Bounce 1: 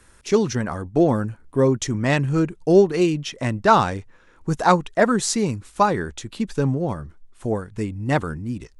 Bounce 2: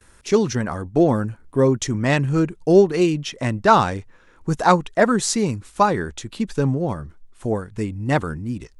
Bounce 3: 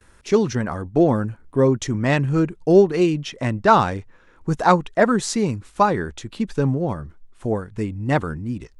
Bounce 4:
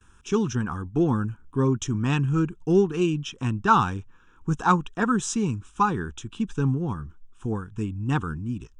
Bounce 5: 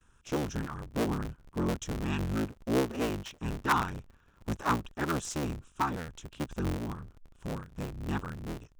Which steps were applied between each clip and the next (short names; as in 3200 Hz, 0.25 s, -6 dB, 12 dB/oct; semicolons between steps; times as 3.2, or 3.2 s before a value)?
gate with hold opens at -47 dBFS; gain +1 dB
high shelf 5200 Hz -7 dB
fixed phaser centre 3000 Hz, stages 8; gain -1.5 dB
cycle switcher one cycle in 3, inverted; gain -8.5 dB